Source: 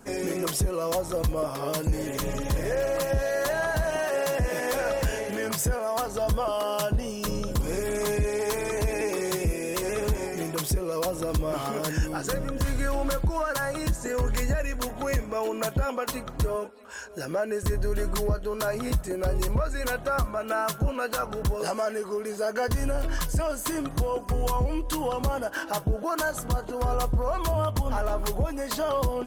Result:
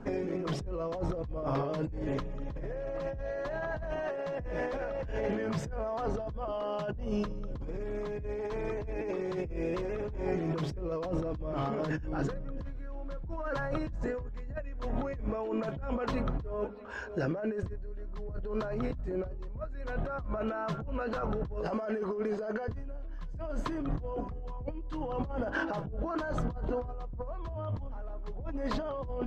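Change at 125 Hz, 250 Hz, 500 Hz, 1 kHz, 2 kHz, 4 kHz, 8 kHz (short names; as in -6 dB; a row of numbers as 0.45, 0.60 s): -8.0 dB, -3.5 dB, -7.0 dB, -8.5 dB, -9.0 dB, -14.5 dB, under -25 dB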